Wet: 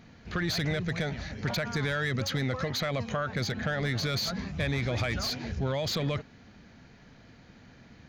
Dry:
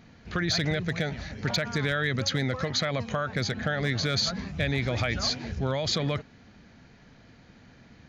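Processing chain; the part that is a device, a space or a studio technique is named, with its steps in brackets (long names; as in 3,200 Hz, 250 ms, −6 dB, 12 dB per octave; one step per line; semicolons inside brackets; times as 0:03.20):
saturation between pre-emphasis and de-emphasis (high-shelf EQ 2,500 Hz +10.5 dB; soft clipping −20 dBFS, distortion −11 dB; high-shelf EQ 2,500 Hz −10.5 dB)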